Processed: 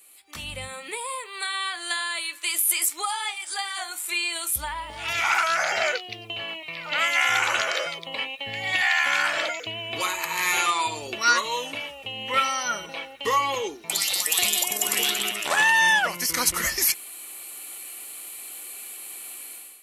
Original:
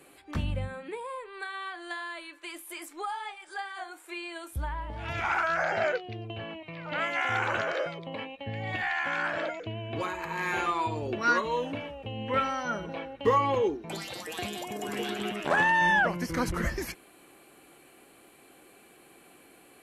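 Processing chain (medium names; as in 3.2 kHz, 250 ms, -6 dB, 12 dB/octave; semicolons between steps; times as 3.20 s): level rider gain up to 15 dB; pre-emphasis filter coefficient 0.97; band-stop 1.6 kHz, Q 8.7; trim +7.5 dB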